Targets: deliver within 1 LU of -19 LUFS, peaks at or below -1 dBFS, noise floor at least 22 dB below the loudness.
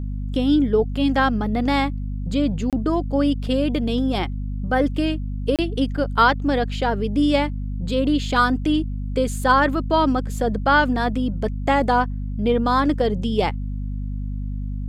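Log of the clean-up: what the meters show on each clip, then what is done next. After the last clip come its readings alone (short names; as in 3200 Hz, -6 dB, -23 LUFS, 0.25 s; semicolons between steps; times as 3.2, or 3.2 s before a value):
dropouts 2; longest dropout 27 ms; hum 50 Hz; harmonics up to 250 Hz; hum level -24 dBFS; loudness -21.5 LUFS; peak -3.5 dBFS; loudness target -19.0 LUFS
-> interpolate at 2.7/5.56, 27 ms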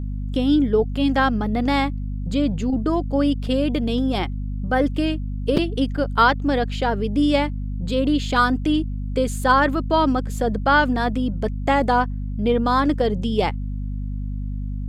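dropouts 0; hum 50 Hz; harmonics up to 250 Hz; hum level -24 dBFS
-> notches 50/100/150/200/250 Hz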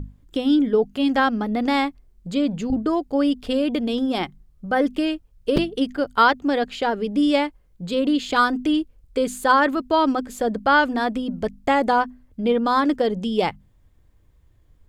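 hum none; loudness -21.5 LUFS; peak -4.5 dBFS; loudness target -19.0 LUFS
-> gain +2.5 dB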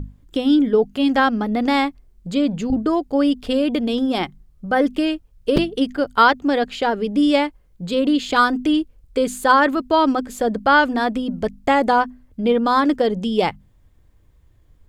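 loudness -19.0 LUFS; peak -2.0 dBFS; noise floor -55 dBFS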